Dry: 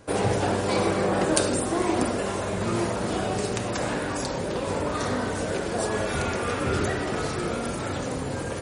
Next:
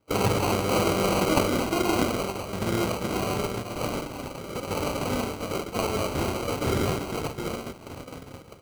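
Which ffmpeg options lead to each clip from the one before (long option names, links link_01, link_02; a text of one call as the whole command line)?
ffmpeg -i in.wav -af "agate=range=-20dB:threshold=-27dB:ratio=16:detection=peak,acrusher=samples=25:mix=1:aa=0.000001" out.wav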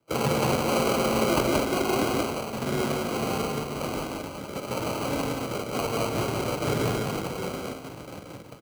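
ffmpeg -i in.wav -filter_complex "[0:a]afreqshift=29,asplit=2[link_01][link_02];[link_02]aecho=0:1:178:0.708[link_03];[link_01][link_03]amix=inputs=2:normalize=0,volume=-2dB" out.wav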